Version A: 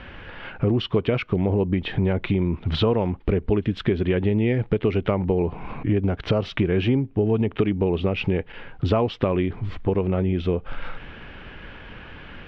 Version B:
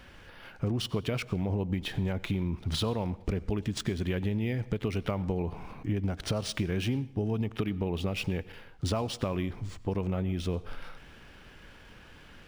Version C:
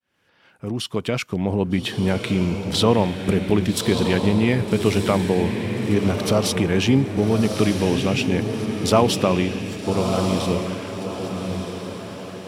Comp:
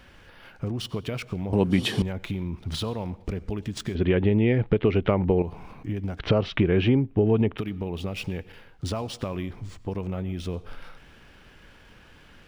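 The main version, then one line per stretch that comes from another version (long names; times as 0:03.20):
B
0:01.53–0:02.02: punch in from C
0:03.95–0:05.42: punch in from A
0:06.19–0:07.58: punch in from A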